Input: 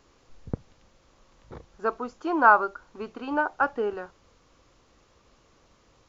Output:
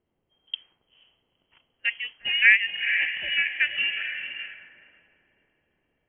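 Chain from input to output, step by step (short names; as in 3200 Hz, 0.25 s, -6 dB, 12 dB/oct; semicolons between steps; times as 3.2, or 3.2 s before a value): diffused feedback echo 0.47 s, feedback 46%, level -6.5 dB; inverted band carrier 3200 Hz; low-pass opened by the level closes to 410 Hz, open at -24.5 dBFS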